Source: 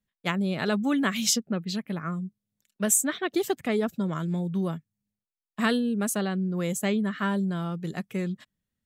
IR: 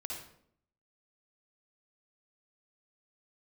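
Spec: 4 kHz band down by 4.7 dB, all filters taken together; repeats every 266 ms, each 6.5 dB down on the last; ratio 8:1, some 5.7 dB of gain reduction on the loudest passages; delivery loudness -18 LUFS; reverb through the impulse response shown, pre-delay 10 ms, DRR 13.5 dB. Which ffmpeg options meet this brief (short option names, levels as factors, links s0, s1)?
-filter_complex "[0:a]equalizer=f=4000:t=o:g=-6.5,acompressor=threshold=0.0501:ratio=8,aecho=1:1:266|532|798|1064|1330|1596:0.473|0.222|0.105|0.0491|0.0231|0.0109,asplit=2[s0][s1];[1:a]atrim=start_sample=2205,adelay=10[s2];[s1][s2]afir=irnorm=-1:irlink=0,volume=0.224[s3];[s0][s3]amix=inputs=2:normalize=0,volume=4.22"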